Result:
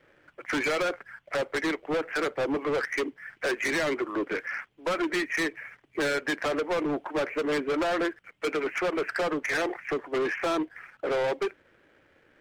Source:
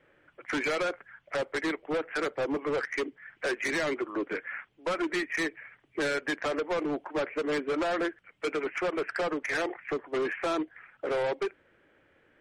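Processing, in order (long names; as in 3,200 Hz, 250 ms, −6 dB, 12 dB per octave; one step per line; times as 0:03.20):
leveller curve on the samples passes 1
level +1.5 dB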